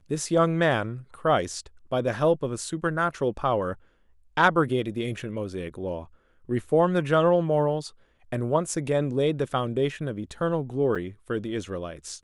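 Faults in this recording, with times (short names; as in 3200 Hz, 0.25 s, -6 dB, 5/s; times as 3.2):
10.95–10.96 gap 6.1 ms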